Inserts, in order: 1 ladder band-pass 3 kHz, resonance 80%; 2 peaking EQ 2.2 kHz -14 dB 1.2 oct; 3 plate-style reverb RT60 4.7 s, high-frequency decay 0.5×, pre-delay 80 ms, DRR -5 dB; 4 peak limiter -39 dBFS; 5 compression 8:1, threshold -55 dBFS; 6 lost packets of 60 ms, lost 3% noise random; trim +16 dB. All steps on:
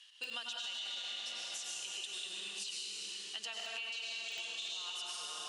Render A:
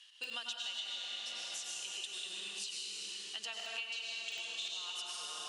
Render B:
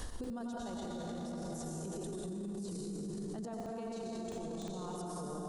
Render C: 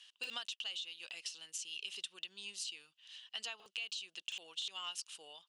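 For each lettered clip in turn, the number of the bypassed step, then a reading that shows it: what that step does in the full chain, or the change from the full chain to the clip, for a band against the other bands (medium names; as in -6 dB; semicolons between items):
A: 4, crest factor change +3.0 dB; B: 1, 250 Hz band +33.5 dB; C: 3, momentary loudness spread change +3 LU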